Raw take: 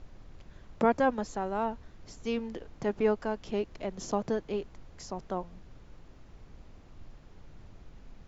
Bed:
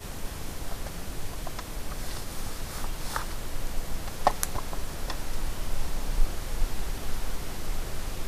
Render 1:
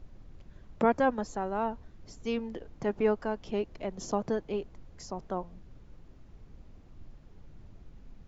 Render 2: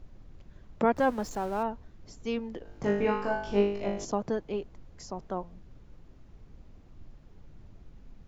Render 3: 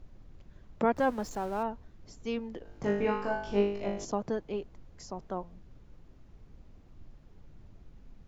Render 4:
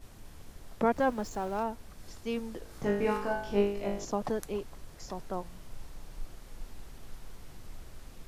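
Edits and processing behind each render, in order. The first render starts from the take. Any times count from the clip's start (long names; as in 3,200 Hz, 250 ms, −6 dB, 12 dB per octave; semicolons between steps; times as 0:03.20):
broadband denoise 6 dB, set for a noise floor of −54 dBFS
0:00.96–0:01.63: converter with a step at zero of −42.5 dBFS; 0:02.63–0:04.05: flutter between parallel walls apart 3.4 metres, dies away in 0.62 s
level −2 dB
mix in bed −16.5 dB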